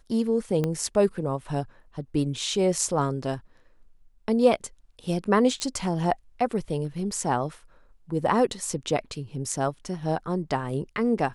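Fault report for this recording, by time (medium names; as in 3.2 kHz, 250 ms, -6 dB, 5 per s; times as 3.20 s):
0.64 s: pop -14 dBFS
5.60 s: pop -17 dBFS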